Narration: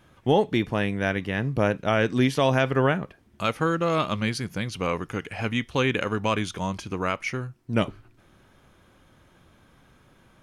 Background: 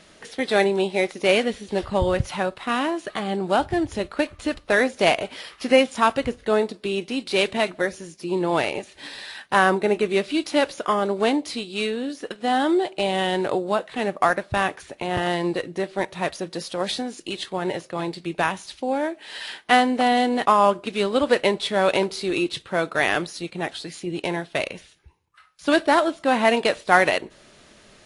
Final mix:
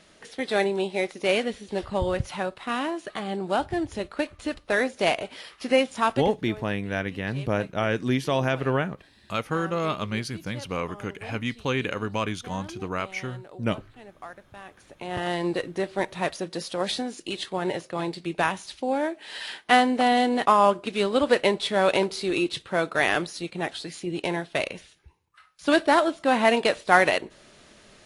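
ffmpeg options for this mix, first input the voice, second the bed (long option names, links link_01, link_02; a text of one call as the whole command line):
ffmpeg -i stem1.wav -i stem2.wav -filter_complex "[0:a]adelay=5900,volume=-3dB[link_01];[1:a]volume=16dB,afade=type=out:start_time=6.17:duration=0.36:silence=0.133352,afade=type=in:start_time=14.65:duration=0.92:silence=0.0944061[link_02];[link_01][link_02]amix=inputs=2:normalize=0" out.wav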